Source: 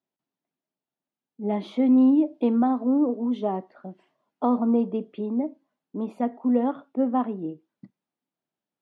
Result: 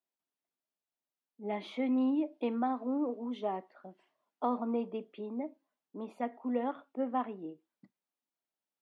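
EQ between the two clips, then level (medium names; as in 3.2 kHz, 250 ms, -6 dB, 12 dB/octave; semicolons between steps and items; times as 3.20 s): high-pass 540 Hz 6 dB/octave; dynamic bell 2.3 kHz, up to +7 dB, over -56 dBFS, Q 2.1; -5.0 dB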